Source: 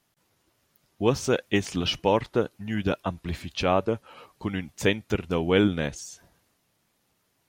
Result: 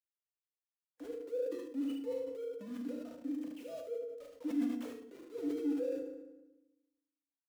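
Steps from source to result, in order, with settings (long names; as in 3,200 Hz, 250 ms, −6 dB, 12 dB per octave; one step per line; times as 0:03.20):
three sine waves on the formant tracks
treble cut that deepens with the level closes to 2,000 Hz, closed at −19.5 dBFS
parametric band 560 Hz +11.5 dB 0.48 octaves
downward compressor 6 to 1, threshold −50 dBFS, peak gain reduction 35 dB
brickwall limiter −47.5 dBFS, peak gain reduction 11 dB
log-companded quantiser 4 bits
hollow resonant body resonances 290/490 Hz, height 18 dB, ringing for 65 ms
harmonic and percussive parts rebalanced percussive −10 dB
ambience of single reflections 38 ms −5.5 dB, 75 ms −4 dB
feedback delay network reverb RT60 1 s, low-frequency decay 1.35×, high-frequency decay 0.75×, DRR 5.5 dB
level that may fall only so fast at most 49 dB per second
level −2.5 dB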